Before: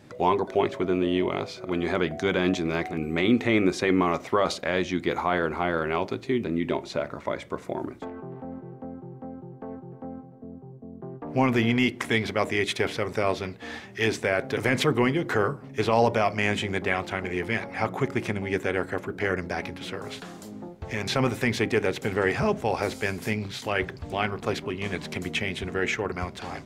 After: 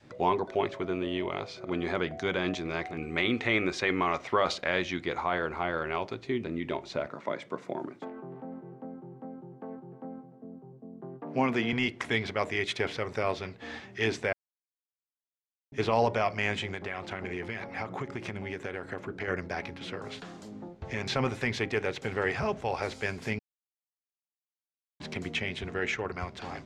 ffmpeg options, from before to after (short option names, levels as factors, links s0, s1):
-filter_complex "[0:a]asettb=1/sr,asplit=3[s0][s1][s2];[s0]atrim=end=2.984[s3];[s1]atrim=start=2.98:end=5.03,asetpts=PTS-STARTPTS,afade=t=in:d=0.004:c=qsin,afade=t=out:st=2.046:d=0.004:c=qsin,equalizer=f=2400:w=0.52:g=4[s4];[s2]atrim=start=5.026[s5];[s3][s4]acrossfade=d=0.004:c1=hsin:c2=qsin[s6];[s6][s5]acrossfade=d=0.004:c1=qsin:c2=hsin,asettb=1/sr,asplit=3[s7][s8][s9];[s7]atrim=end=7.074[s10];[s8]atrim=start=7.07:end=11.73,asetpts=PTS-STARTPTS,afade=t=in:d=0.004:c=qsin,afade=t=out:st=4.656:d=0.004:c=qsin,highpass=f=140:w=0.5412,highpass=f=140:w=1.3066[s11];[s9]atrim=start=11.726[s12];[s10][s11]acrossfade=d=0.004:c1=hsin:c2=qsin[s13];[s13][s12]acrossfade=d=0.004:c1=qsin:c2=hsin,asettb=1/sr,asplit=3[s14][s15][s16];[s14]atrim=end=16.744[s17];[s15]atrim=start=16.74:end=19.28,asetpts=PTS-STARTPTS,afade=t=in:d=0.004:c=qsin,afade=t=out:st=2.536:d=0.004:c=qsin,acompressor=threshold=0.0501:ratio=6:attack=3.2:release=140:knee=1:detection=peak[s18];[s16]atrim=start=19.276[s19];[s17][s18]acrossfade=d=0.004:c1=hsin:c2=qsin[s20];[s20][s19]acrossfade=d=0.004:c1=qsin:c2=hsin,asplit=5[s21][s22][s23][s24][s25];[s21]atrim=end=14.33,asetpts=PTS-STARTPTS,afade=t=out:st=14.326:d=0.004:c=hsin[s26];[s22]atrim=start=14.33:end=15.72,asetpts=PTS-STARTPTS,volume=0[s27];[s23]atrim=start=15.72:end=23.39,asetpts=PTS-STARTPTS,afade=t=in:d=0.004:c=hsin,afade=t=out:st=7.666:d=0.004:c=hsin[s28];[s24]atrim=start=23.39:end=25,asetpts=PTS-STARTPTS,volume=0[s29];[s25]atrim=start=25,asetpts=PTS-STARTPTS,afade=t=in:d=0.004:c=hsin[s30];[s26][s27][s28][s29][s30]concat=n=5:v=0:a=1,lowpass=6400,adynamicequalizer=threshold=0.0141:dfrequency=240:dqfactor=0.82:tfrequency=240:tqfactor=0.82:attack=5:release=100:ratio=0.375:range=3.5:mode=cutabove:tftype=bell,volume=0.668"